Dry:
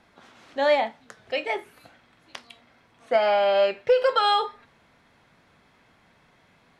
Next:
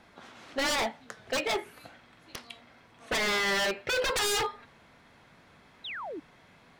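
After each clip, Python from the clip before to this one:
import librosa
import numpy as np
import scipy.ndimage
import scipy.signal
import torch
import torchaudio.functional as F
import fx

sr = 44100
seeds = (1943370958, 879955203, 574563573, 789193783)

y = 10.0 ** (-25.0 / 20.0) * (np.abs((x / 10.0 ** (-25.0 / 20.0) + 3.0) % 4.0 - 2.0) - 1.0)
y = fx.spec_paint(y, sr, seeds[0], shape='fall', start_s=5.84, length_s=0.36, low_hz=270.0, high_hz=4100.0, level_db=-40.0)
y = F.gain(torch.from_numpy(y), 2.0).numpy()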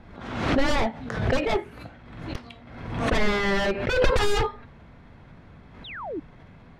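y = fx.riaa(x, sr, side='playback')
y = fx.pre_swell(y, sr, db_per_s=56.0)
y = F.gain(torch.from_numpy(y), 3.0).numpy()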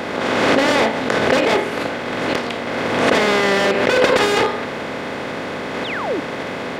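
y = fx.bin_compress(x, sr, power=0.4)
y = scipy.signal.sosfilt(scipy.signal.butter(2, 220.0, 'highpass', fs=sr, output='sos'), y)
y = F.gain(torch.from_numpy(y), 4.0).numpy()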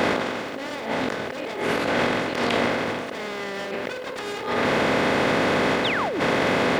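y = fx.over_compress(x, sr, threshold_db=-26.0, ratio=-1.0)
y = np.where(np.abs(y) >= 10.0 ** (-47.5 / 20.0), y, 0.0)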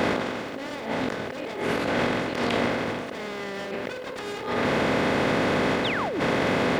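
y = fx.low_shelf(x, sr, hz=280.0, db=5.0)
y = F.gain(torch.from_numpy(y), -3.5).numpy()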